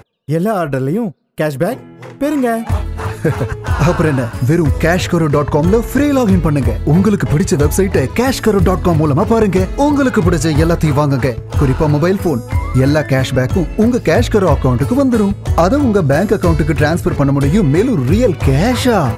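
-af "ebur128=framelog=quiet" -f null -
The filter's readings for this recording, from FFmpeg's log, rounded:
Integrated loudness:
  I:         -13.7 LUFS
  Threshold: -23.8 LUFS
Loudness range:
  LRA:         4.0 LU
  Threshold: -33.7 LUFS
  LRA low:   -16.9 LUFS
  LRA high:  -12.8 LUFS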